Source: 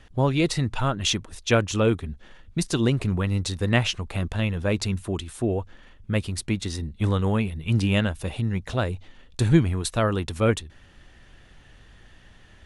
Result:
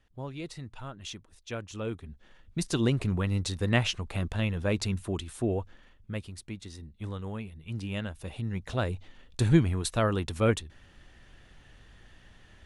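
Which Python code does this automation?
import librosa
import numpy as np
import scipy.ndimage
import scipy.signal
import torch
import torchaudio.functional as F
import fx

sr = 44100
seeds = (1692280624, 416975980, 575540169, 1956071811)

y = fx.gain(x, sr, db=fx.line((1.54, -17.0), (2.76, -4.0), (5.59, -4.0), (6.39, -14.0), (7.77, -14.0), (8.9, -3.5)))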